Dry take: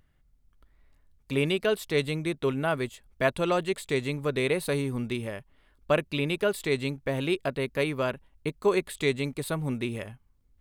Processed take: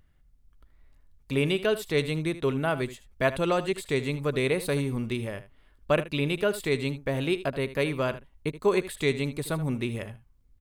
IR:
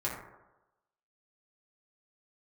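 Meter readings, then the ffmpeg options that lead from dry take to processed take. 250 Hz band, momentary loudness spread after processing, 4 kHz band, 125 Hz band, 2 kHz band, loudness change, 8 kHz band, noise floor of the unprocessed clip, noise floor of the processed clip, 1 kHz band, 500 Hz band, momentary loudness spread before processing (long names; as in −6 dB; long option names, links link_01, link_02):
+1.0 dB, 6 LU, 0.0 dB, +2.0 dB, 0.0 dB, +0.5 dB, 0.0 dB, −66 dBFS, −61 dBFS, 0.0 dB, +0.5 dB, 7 LU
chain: -filter_complex "[0:a]lowshelf=frequency=110:gain=4.5,asplit=2[link_01][link_02];[link_02]aecho=0:1:77:0.188[link_03];[link_01][link_03]amix=inputs=2:normalize=0"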